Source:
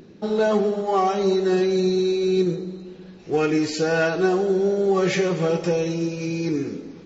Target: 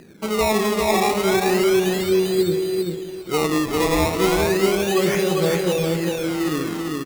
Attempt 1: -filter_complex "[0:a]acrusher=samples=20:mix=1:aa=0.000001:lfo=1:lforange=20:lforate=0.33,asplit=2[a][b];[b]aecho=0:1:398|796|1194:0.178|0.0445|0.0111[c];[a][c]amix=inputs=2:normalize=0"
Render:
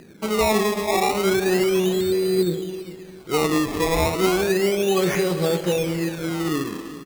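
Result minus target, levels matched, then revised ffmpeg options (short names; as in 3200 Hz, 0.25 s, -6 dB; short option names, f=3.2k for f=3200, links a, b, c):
echo-to-direct -12 dB
-filter_complex "[0:a]acrusher=samples=20:mix=1:aa=0.000001:lfo=1:lforange=20:lforate=0.33,asplit=2[a][b];[b]aecho=0:1:398|796|1194|1592:0.708|0.177|0.0442|0.0111[c];[a][c]amix=inputs=2:normalize=0"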